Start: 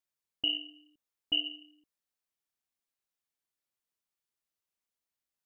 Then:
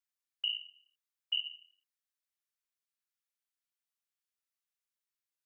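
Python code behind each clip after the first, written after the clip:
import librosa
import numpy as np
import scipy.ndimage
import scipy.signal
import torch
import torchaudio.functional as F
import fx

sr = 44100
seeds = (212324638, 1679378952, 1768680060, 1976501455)

y = scipy.signal.sosfilt(scipy.signal.butter(4, 1100.0, 'highpass', fs=sr, output='sos'), x)
y = y * 10.0 ** (-3.5 / 20.0)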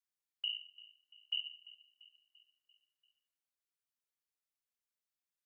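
y = fx.echo_feedback(x, sr, ms=342, feedback_pct=55, wet_db=-19)
y = y * 10.0 ** (-4.0 / 20.0)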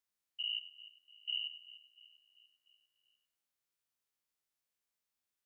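y = fx.spec_steps(x, sr, hold_ms=100)
y = y * 10.0 ** (4.5 / 20.0)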